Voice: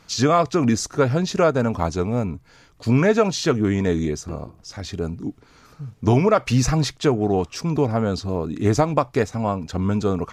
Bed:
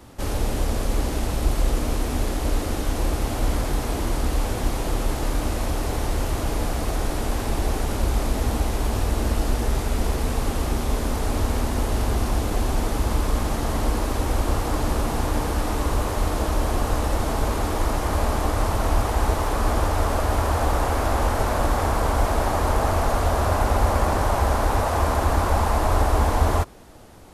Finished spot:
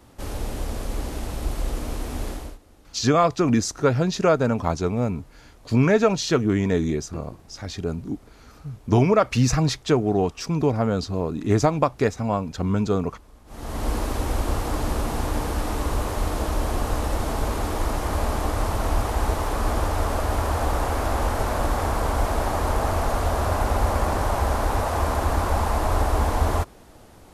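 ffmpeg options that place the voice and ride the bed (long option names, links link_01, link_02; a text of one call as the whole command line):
ffmpeg -i stem1.wav -i stem2.wav -filter_complex "[0:a]adelay=2850,volume=-1dB[link_01];[1:a]volume=20.5dB,afade=type=out:start_time=2.3:duration=0.28:silence=0.0749894,afade=type=in:start_time=13.46:duration=0.46:silence=0.0501187[link_02];[link_01][link_02]amix=inputs=2:normalize=0" out.wav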